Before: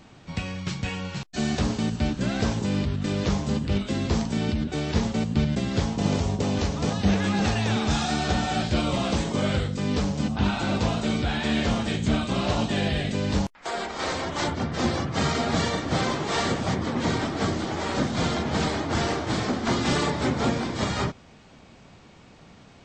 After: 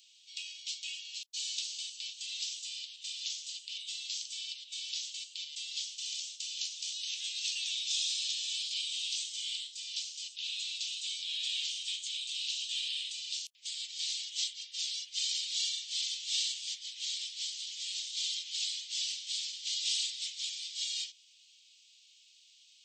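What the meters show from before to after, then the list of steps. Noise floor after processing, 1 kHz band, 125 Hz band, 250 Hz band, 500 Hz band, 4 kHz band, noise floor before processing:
−62 dBFS, below −40 dB, below −40 dB, below −40 dB, below −40 dB, +0.5 dB, −51 dBFS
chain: Butterworth high-pass 2,900 Hz 48 dB per octave
level +1 dB

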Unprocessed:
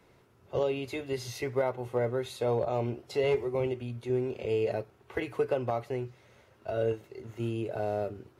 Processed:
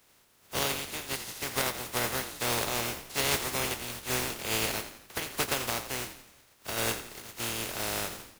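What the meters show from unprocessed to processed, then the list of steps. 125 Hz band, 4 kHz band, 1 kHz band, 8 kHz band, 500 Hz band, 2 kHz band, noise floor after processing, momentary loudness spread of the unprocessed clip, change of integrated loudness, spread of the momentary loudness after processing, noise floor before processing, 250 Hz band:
−5.0 dB, +14.0 dB, +2.5 dB, can't be measured, −8.5 dB, +9.0 dB, −63 dBFS, 8 LU, +1.0 dB, 8 LU, −62 dBFS, −3.5 dB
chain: compressing power law on the bin magnitudes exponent 0.24
echo with shifted repeats 86 ms, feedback 49%, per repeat −48 Hz, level −11 dB
level −1.5 dB

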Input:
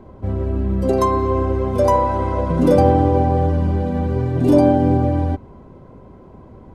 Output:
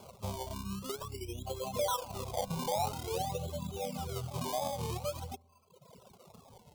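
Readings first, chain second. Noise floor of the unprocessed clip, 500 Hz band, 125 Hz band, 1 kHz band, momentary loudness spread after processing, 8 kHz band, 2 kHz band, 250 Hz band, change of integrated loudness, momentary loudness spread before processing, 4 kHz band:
−43 dBFS, −19.5 dB, −22.0 dB, −17.0 dB, 8 LU, can't be measured, −14.5 dB, −25.5 dB, −19.5 dB, 8 LU, 0.0 dB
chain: Butterworth low-pass 6,700 Hz 96 dB per octave
reverb reduction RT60 1.1 s
gain on a spectral selection 0:00.54–0:01.47, 450–3,500 Hz −19 dB
high-pass filter 150 Hz 12 dB per octave
reverb reduction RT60 1.3 s
brickwall limiter −14 dBFS, peak gain reduction 9 dB
downward compressor 2 to 1, threshold −29 dBFS, peak gain reduction 6.5 dB
sample-and-hold swept by an LFO 23×, swing 100% 0.49 Hz
phaser with its sweep stopped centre 730 Hz, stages 4
delay with a low-pass on its return 60 ms, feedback 67%, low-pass 530 Hz, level −24 dB
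wow of a warped record 33 1/3 rpm, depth 160 cents
level −3 dB

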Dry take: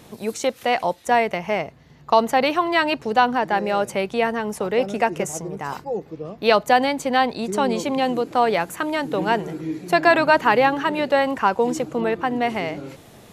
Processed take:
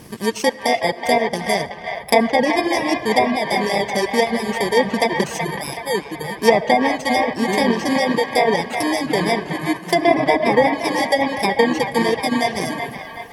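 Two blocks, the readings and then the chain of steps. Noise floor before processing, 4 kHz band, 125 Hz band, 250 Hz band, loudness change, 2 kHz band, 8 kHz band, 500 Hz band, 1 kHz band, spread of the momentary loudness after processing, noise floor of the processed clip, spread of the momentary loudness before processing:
−47 dBFS, +4.5 dB, +4.5 dB, +4.5 dB, +2.0 dB, +2.5 dB, +5.0 dB, +2.5 dB, +0.5 dB, 8 LU, −35 dBFS, 12 LU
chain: samples in bit-reversed order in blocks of 32 samples
parametric band 580 Hz −2.5 dB 0.2 octaves
treble cut that deepens with the level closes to 1,900 Hz, closed at −12.5 dBFS
high-shelf EQ 11,000 Hz −6 dB
comb and all-pass reverb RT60 2.2 s, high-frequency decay 0.3×, pre-delay 30 ms, DRR 6.5 dB
reverb reduction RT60 1.8 s
on a send: delay with a band-pass on its return 375 ms, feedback 50%, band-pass 1,500 Hz, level −4 dB
on the sum: level +7 dB

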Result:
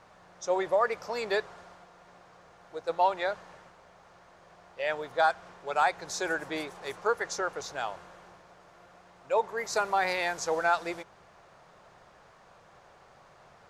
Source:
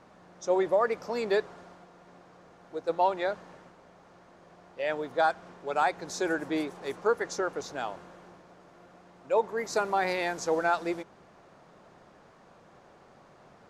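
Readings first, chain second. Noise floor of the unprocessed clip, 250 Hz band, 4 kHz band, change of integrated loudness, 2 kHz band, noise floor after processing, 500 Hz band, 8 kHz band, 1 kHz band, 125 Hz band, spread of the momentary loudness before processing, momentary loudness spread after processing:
−57 dBFS, −7.0 dB, +2.5 dB, −0.5 dB, +2.0 dB, −58 dBFS, −2.0 dB, +2.5 dB, +1.0 dB, −4.0 dB, 11 LU, 12 LU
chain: parametric band 260 Hz −12 dB 1.5 octaves
level +2.5 dB

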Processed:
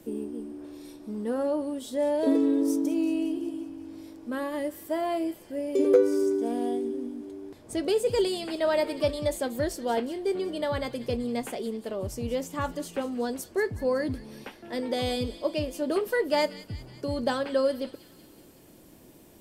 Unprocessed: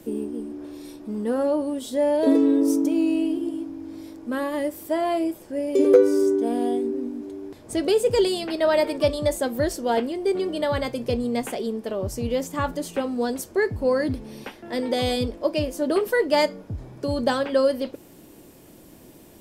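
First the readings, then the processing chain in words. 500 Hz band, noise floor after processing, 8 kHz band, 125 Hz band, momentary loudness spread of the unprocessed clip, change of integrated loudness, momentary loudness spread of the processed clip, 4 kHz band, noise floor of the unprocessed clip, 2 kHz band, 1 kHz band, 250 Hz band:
−5.0 dB, −53 dBFS, −4.5 dB, −5.0 dB, 14 LU, −5.0 dB, 14 LU, −4.5 dB, −49 dBFS, −5.0 dB, −5.0 dB, −5.0 dB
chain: delay with a high-pass on its return 186 ms, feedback 61%, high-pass 2,300 Hz, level −13.5 dB
level −5 dB

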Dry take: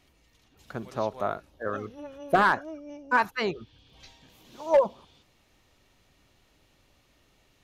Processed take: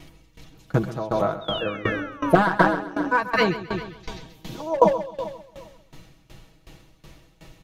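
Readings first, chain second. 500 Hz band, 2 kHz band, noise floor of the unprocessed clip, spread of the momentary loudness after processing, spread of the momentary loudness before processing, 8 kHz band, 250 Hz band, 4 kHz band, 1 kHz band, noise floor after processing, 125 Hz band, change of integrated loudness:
+4.5 dB, +4.0 dB, −65 dBFS, 18 LU, 19 LU, can't be measured, +11.0 dB, +9.0 dB, +4.0 dB, −57 dBFS, +14.0 dB, +4.0 dB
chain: low-shelf EQ 370 Hz +9 dB
comb filter 6.2 ms
in parallel at 0 dB: downward compressor, threshold −39 dBFS, peak gain reduction 23.5 dB
on the sum: sound drawn into the spectrogram fall, 0:01.41–0:03.14, 250–3,800 Hz −36 dBFS
on a send: repeating echo 133 ms, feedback 60%, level −7 dB
on the sum: tremolo with a ramp in dB decaying 2.7 Hz, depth 20 dB
level +8 dB

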